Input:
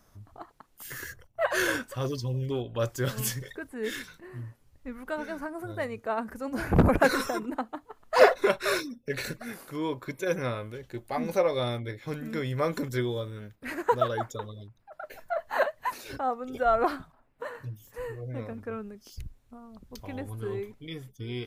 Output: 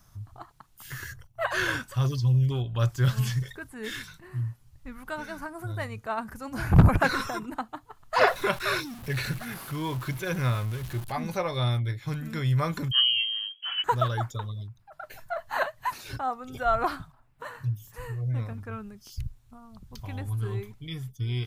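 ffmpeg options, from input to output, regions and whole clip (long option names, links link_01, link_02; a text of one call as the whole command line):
ffmpeg -i in.wav -filter_complex "[0:a]asettb=1/sr,asplit=3[link_01][link_02][link_03];[link_01]atrim=end=8.274[link_04];[link_02]atrim=start=8.27:end=11.12,asetpts=PTS-STARTPTS,afade=type=in:duration=0.004:curve=qsin,afade=type=out:start_time=2.846:duration=0.004:curve=qsin,aeval=exprs='val(0)+0.5*0.0119*sgn(val(0))':channel_layout=same,equalizer=frequency=12000:width_type=o:width=0.69:gain=10[link_05];[link_03]atrim=start=11.116[link_06];[link_04][link_05]acrossfade=duration=0.004:curve1=hsin:curve2=qsin[link_07];[link_07][link_06]acrossfade=duration=0.004:curve1=qsin:curve2=hsin,asettb=1/sr,asplit=3[link_08][link_09][link_10];[link_08]atrim=end=12.914[link_11];[link_09]atrim=start=12.91:end=13.84,asetpts=PTS-STARTPTS,afade=type=in:duration=0.004:curve=qsin,afade=type=out:start_time=0.926:duration=0.004:curve=qsin,tiltshelf=frequency=760:gain=7,lowpass=frequency=2800:width_type=q:width=0.5098,lowpass=frequency=2800:width_type=q:width=0.6013,lowpass=frequency=2800:width_type=q:width=0.9,lowpass=frequency=2800:width_type=q:width=2.563,afreqshift=-3300[link_12];[link_10]atrim=start=13.836[link_13];[link_11][link_12]acrossfade=duration=0.004:curve1=hsin:curve2=qsin[link_14];[link_14][link_13]acrossfade=duration=0.004:curve1=qsin:curve2=hsin,acrossover=split=4400[link_15][link_16];[link_16]acompressor=threshold=-49dB:ratio=4:attack=1:release=60[link_17];[link_15][link_17]amix=inputs=2:normalize=0,equalizer=frequency=125:width_type=o:width=1:gain=7,equalizer=frequency=250:width_type=o:width=1:gain=-7,equalizer=frequency=500:width_type=o:width=1:gain=-11,equalizer=frequency=2000:width_type=o:width=1:gain=-4,volume=4.5dB" out.wav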